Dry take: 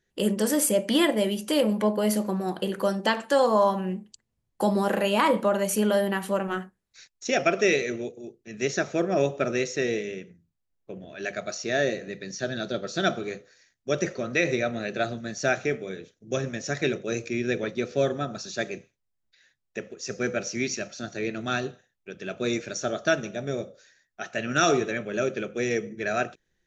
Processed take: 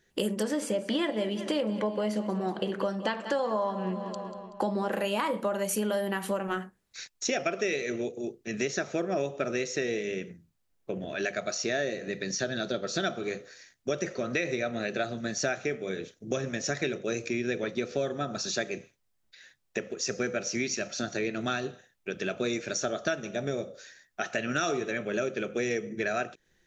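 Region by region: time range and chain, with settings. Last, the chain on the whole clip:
0:00.43–0:04.92: high-frequency loss of the air 100 metres + repeating echo 189 ms, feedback 55%, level −16 dB
whole clip: low-shelf EQ 160 Hz −4.5 dB; downward compressor 4 to 1, threshold −37 dBFS; level +8 dB

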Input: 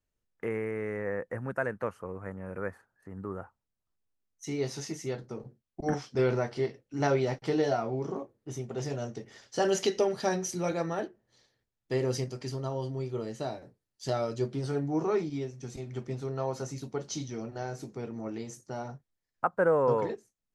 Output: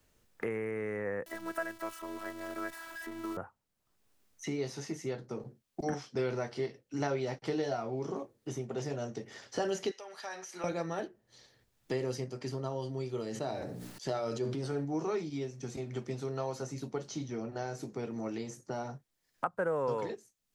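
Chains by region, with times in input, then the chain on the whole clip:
0:01.26–0:03.37: converter with a step at zero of −42 dBFS + spectral tilt +2 dB per octave + phases set to zero 329 Hz
0:09.91–0:10.64: high-pass filter 1,000 Hz + downward compressor 2.5 to 1, threshold −41 dBFS
0:13.29–0:14.85: mains-hum notches 60/120/180/240/300 Hz + flutter between parallel walls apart 10.8 metres, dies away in 0.23 s + level that may fall only so fast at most 37 dB per second
whole clip: low-shelf EQ 81 Hz −7 dB; multiband upward and downward compressor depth 70%; level −3.5 dB

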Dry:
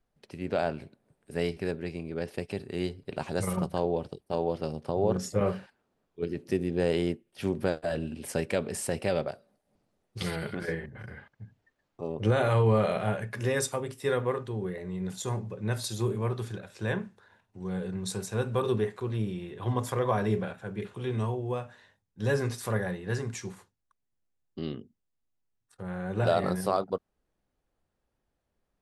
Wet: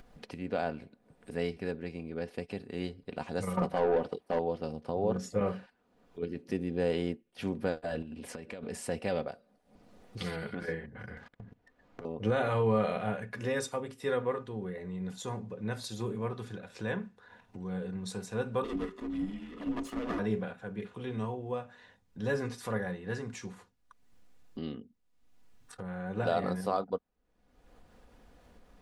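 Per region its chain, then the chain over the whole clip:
0:03.57–0:04.39: mid-hump overdrive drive 22 dB, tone 1,100 Hz, clips at −14 dBFS + high-shelf EQ 9,600 Hz +9.5 dB + one half of a high-frequency compander encoder only
0:08.02–0:08.63: high-shelf EQ 8,600 Hz −5.5 dB + downward compressor 10 to 1, threshold −36 dBFS
0:11.17–0:12.05: high-shelf EQ 2,600 Hz −9.5 dB + leveller curve on the samples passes 3 + downward compressor 8 to 1, threshold −47 dBFS
0:18.64–0:20.19: lower of the sound and its delayed copy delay 1.3 ms + frequency shifter −390 Hz + parametric band 110 Hz −15 dB 0.62 octaves
whole clip: high-shelf EQ 7,700 Hz −11 dB; comb filter 4.1 ms, depth 41%; upward compression, threshold −33 dBFS; level −4 dB

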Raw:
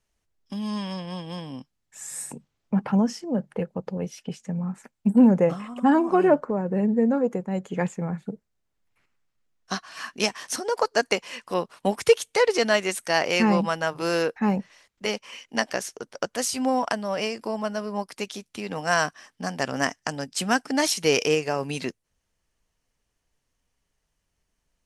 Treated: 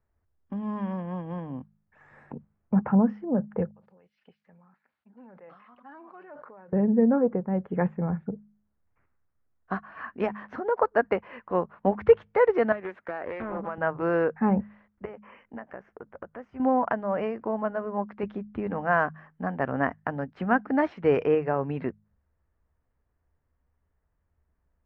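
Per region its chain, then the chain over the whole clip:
0:03.71–0:06.73: resonant band-pass 4,500 Hz, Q 3.7 + level that may fall only so fast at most 23 dB per second
0:12.72–0:13.78: high-pass filter 270 Hz + downward compressor 16 to 1, threshold −27 dBFS + highs frequency-modulated by the lows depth 0.41 ms
0:15.05–0:16.60: parametric band 4,000 Hz −13 dB 0.47 octaves + downward compressor 3 to 1, threshold −39 dBFS
0:18.23–0:18.67: low-pass filter 10,000 Hz + low-shelf EQ 330 Hz +8 dB
whole clip: low-pass filter 1,700 Hz 24 dB per octave; parametric band 75 Hz +12 dB 0.77 octaves; hum removal 52.16 Hz, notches 4

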